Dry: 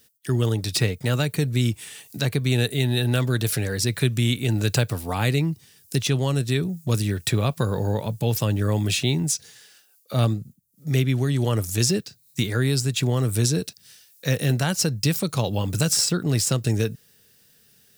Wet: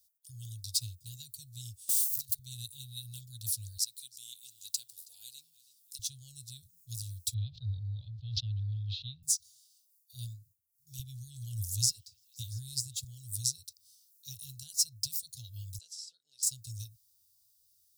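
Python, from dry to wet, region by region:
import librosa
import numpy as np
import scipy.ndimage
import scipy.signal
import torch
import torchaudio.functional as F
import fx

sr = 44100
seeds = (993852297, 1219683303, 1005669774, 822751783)

y = fx.chain(x, sr, fx.crossing_spikes(level_db=-21.0),
    fx.over_compress(threshold_db=-26.0, ratio=-0.5), at=(1.89, 2.39))
y = fx.chain(y, sr, fx.highpass(hz=280.0, slope=24),
    fx.echo_feedback(ms=323, feedback_pct=41, wet_db=-18.0), at=(3.77, 5.99))
y = fx.chain(y, sr, fx.ellip_lowpass(hz=3900.0, order=4, stop_db=60),
    fx.peak_eq(hz=140.0, db=5.5, octaves=1.4),
    fx.sustainer(db_per_s=23.0), at=(7.34, 9.23))
y = fx.chain(y, sr, fx.low_shelf(hz=120.0, db=9.0),
    fx.echo_stepped(ms=171, hz=1200.0, octaves=0.7, feedback_pct=70, wet_db=-11), at=(10.99, 13.04))
y = fx.chain(y, sr, fx.highpass(hz=380.0, slope=24),
    fx.spacing_loss(db_at_10k=21), at=(15.78, 16.43))
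y = scipy.signal.sosfilt(scipy.signal.cheby2(4, 40, [180.0, 2200.0], 'bandstop', fs=sr, output='sos'), y)
y = fx.high_shelf(y, sr, hz=5800.0, db=4.5)
y = fx.upward_expand(y, sr, threshold_db=-35.0, expansion=1.5)
y = y * 10.0 ** (-5.5 / 20.0)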